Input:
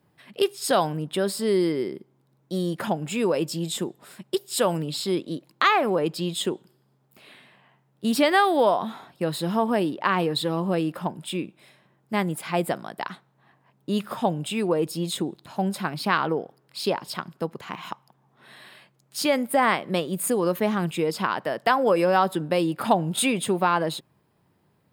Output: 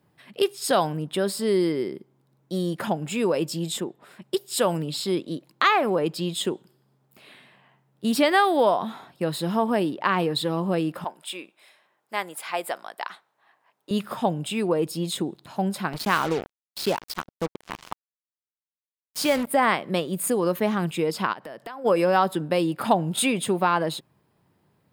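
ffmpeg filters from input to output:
ffmpeg -i in.wav -filter_complex "[0:a]asettb=1/sr,asplit=3[link_01][link_02][link_03];[link_01]atrim=end=3.804[link_04];[link_02]atrim=start=3.8:end=4.22,asetpts=PTS-STARTPTS,afade=type=in:duration=0.004:curve=qsin,afade=type=out:start_time=0.416:duration=0.004:curve=qsin,bass=frequency=250:gain=-4,treble=frequency=4000:gain=-11[link_05];[link_03]atrim=start=4.216[link_06];[link_04][link_05]acrossfade=duration=0.004:curve1=hsin:curve2=qsin[link_07];[link_07][link_06]acrossfade=duration=0.004:curve1=qsin:curve2=hsin,asettb=1/sr,asplit=3[link_08][link_09][link_10];[link_08]atrim=end=11.044[link_11];[link_09]atrim=start=11.04:end=13.91,asetpts=PTS-STARTPTS,afade=type=in:duration=0.004:curve=qsin,afade=type=out:start_time=2.866:duration=0.004:curve=qsin,highpass=620[link_12];[link_10]atrim=start=13.906[link_13];[link_11][link_12]acrossfade=duration=0.004:curve1=hsin:curve2=qsin[link_14];[link_14][link_13]acrossfade=duration=0.004:curve1=qsin:curve2=hsin,asettb=1/sr,asplit=3[link_15][link_16][link_17];[link_15]atrim=end=15.934[link_18];[link_16]atrim=start=15.93:end=19.47,asetpts=PTS-STARTPTS,afade=type=in:duration=0.004:curve=qsin,afade=type=out:start_time=3.536:duration=0.004:curve=qsin,acrusher=bits=4:mix=0:aa=0.5[link_19];[link_17]atrim=start=19.466[link_20];[link_18][link_19]acrossfade=duration=0.004:curve1=hsin:curve2=qsin[link_21];[link_21][link_20]acrossfade=duration=0.004:curve1=qsin:curve2=hsin,asplit=3[link_22][link_23][link_24];[link_22]afade=type=out:start_time=21.32:duration=0.02[link_25];[link_23]acompressor=threshold=-36dB:ratio=5:attack=3.2:release=140:knee=1:detection=peak,afade=type=in:start_time=21.32:duration=0.02,afade=type=out:start_time=21.84:duration=0.02[link_26];[link_24]afade=type=in:start_time=21.84:duration=0.02[link_27];[link_25][link_26][link_27]amix=inputs=3:normalize=0" out.wav

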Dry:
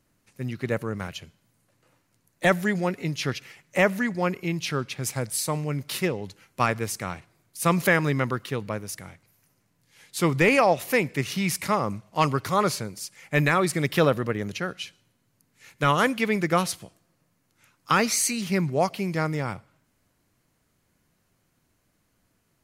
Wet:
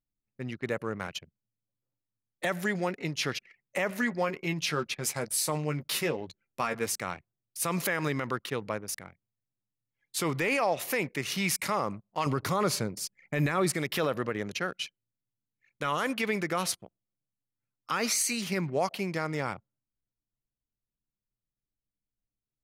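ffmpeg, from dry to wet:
ffmpeg -i in.wav -filter_complex "[0:a]asettb=1/sr,asplit=3[link_01][link_02][link_03];[link_01]atrim=end=3.894[link_04];[link_02]atrim=start=3.89:end=6.86,asetpts=PTS-STARTPTS,afade=type=in:duration=0.004:curve=qsin,afade=type=out:start_time=2.966:duration=0.004:curve=qsin,asplit=2[link_05][link_06];[link_06]adelay=13,volume=-7dB[link_07];[link_05][link_07]amix=inputs=2:normalize=0,atrim=end_sample=130977[link_08];[link_03]atrim=start=6.856[link_09];[link_04][link_08]acrossfade=duration=0.004:curve1=hsin:curve2=qsin[link_10];[link_10][link_09]acrossfade=duration=0.004:curve1=qsin:curve2=hsin,asettb=1/sr,asplit=3[link_11][link_12][link_13];[link_11]atrim=end=12.264[link_14];[link_12]atrim=start=12.26:end=13.72,asetpts=PTS-STARTPTS,afade=type=in:duration=0.004:curve=qsin,afade=type=out:start_time=1.456:duration=0.004:curve=qsin,lowshelf=frequency=440:gain=8.5[link_15];[link_13]atrim=start=13.716[link_16];[link_14][link_15]acrossfade=duration=0.004:curve1=hsin:curve2=qsin[link_17];[link_17][link_16]acrossfade=duration=0.004:curve1=qsin:curve2=hsin,anlmdn=0.251,lowshelf=frequency=200:gain=-11,alimiter=limit=-18dB:level=0:latency=1:release=52" out.wav

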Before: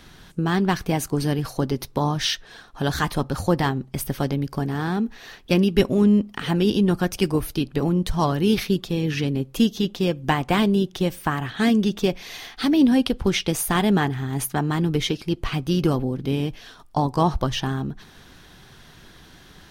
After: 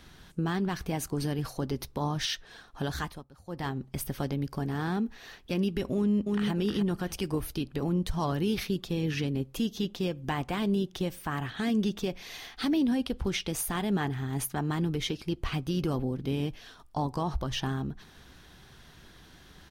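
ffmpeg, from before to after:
ffmpeg -i in.wav -filter_complex "[0:a]asplit=2[link_01][link_02];[link_02]afade=type=in:start_time=5.95:duration=0.01,afade=type=out:start_time=6.51:duration=0.01,aecho=0:1:310|620|930:0.501187|0.125297|0.0313242[link_03];[link_01][link_03]amix=inputs=2:normalize=0,asplit=3[link_04][link_05][link_06];[link_04]atrim=end=3.24,asetpts=PTS-STARTPTS,afade=type=out:start_time=2.82:duration=0.42:silence=0.0749894[link_07];[link_05]atrim=start=3.24:end=3.45,asetpts=PTS-STARTPTS,volume=-22.5dB[link_08];[link_06]atrim=start=3.45,asetpts=PTS-STARTPTS,afade=type=in:duration=0.42:silence=0.0749894[link_09];[link_07][link_08][link_09]concat=n=3:v=0:a=1,equalizer=frequency=63:width_type=o:width=0.35:gain=8,alimiter=limit=-14dB:level=0:latency=1:release=90,volume=-6dB" out.wav

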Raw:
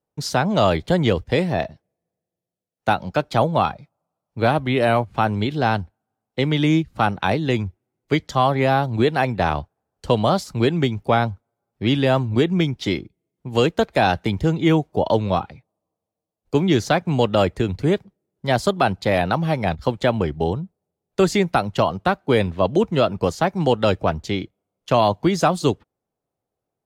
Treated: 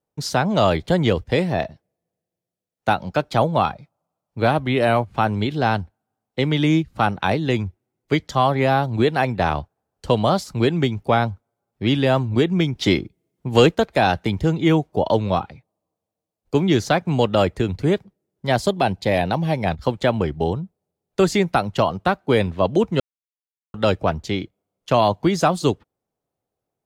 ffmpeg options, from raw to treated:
ffmpeg -i in.wav -filter_complex "[0:a]asettb=1/sr,asplit=3[link_01][link_02][link_03];[link_01]atrim=end=12.754[link_04];[link_02]atrim=start=12.75:end=13.75,asetpts=PTS-STARTPTS,afade=type=in:duration=0.004:curve=qsin,afade=type=out:start_time=0.996:duration=0.004:curve=qsin,acontrast=29[link_05];[link_03]atrim=start=13.746[link_06];[link_04][link_05]acrossfade=duration=0.004:curve1=hsin:curve2=qsin[link_07];[link_07][link_06]acrossfade=duration=0.004:curve1=qsin:curve2=hsin,asettb=1/sr,asplit=3[link_08][link_09][link_10];[link_08]atrim=end=18.614[link_11];[link_09]atrim=start=18.61:end=19.66,asetpts=PTS-STARTPTS,afade=type=in:duration=0.004:curve=qsin,afade=type=out:start_time=1.046:duration=0.004:curve=qsin,equalizer=frequency=1300:width=3.8:gain=-10[link_12];[link_10]atrim=start=19.656[link_13];[link_11][link_12]acrossfade=duration=0.004:curve1=hsin:curve2=qsin[link_14];[link_14][link_13]acrossfade=duration=0.004:curve1=qsin:curve2=hsin,asplit=3[link_15][link_16][link_17];[link_15]atrim=end=23,asetpts=PTS-STARTPTS,afade=type=out:start_time=22.996:duration=0.004:curve=hsin[link_18];[link_16]atrim=start=23:end=23.74,asetpts=PTS-STARTPTS,volume=0[link_19];[link_17]atrim=start=23.74,asetpts=PTS-STARTPTS,afade=type=in:duration=0.004:curve=hsin[link_20];[link_18][link_19][link_20]concat=n=3:v=0:a=1" out.wav

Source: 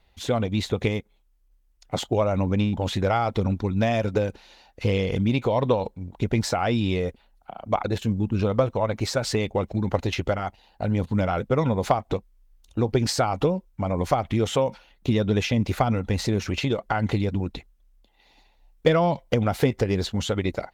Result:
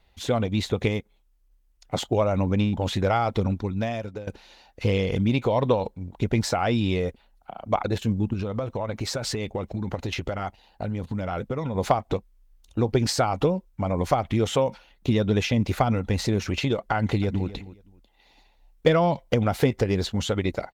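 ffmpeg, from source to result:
ffmpeg -i in.wav -filter_complex "[0:a]asettb=1/sr,asplit=3[link_01][link_02][link_03];[link_01]atrim=end=8.334[link_04];[link_02]atrim=start=8.33:end=11.75,asetpts=PTS-STARTPTS,afade=type=in:duration=0.004:curve=qsin,afade=type=out:start_time=3.416:duration=0.004:curve=qsin,acompressor=threshold=-24dB:ratio=6:attack=3.2:release=140:knee=1:detection=peak[link_05];[link_03]atrim=start=11.746[link_06];[link_04][link_05]acrossfade=duration=0.004:curve1=hsin:curve2=qsin[link_07];[link_07][link_06]acrossfade=duration=0.004:curve1=qsin:curve2=hsin,asplit=2[link_08][link_09];[link_09]afade=type=in:start_time=16.96:duration=0.01,afade=type=out:start_time=17.48:duration=0.01,aecho=0:1:260|520:0.158489|0.0316979[link_10];[link_08][link_10]amix=inputs=2:normalize=0,asplit=2[link_11][link_12];[link_11]atrim=end=4.27,asetpts=PTS-STARTPTS,afade=type=out:start_time=3.39:duration=0.88:silence=0.149624[link_13];[link_12]atrim=start=4.27,asetpts=PTS-STARTPTS,afade=type=in:duration=0.004:curve=hsin:silence=0.149624[link_14];[link_13][link_14]concat=n=2:v=0:a=1" out.wav

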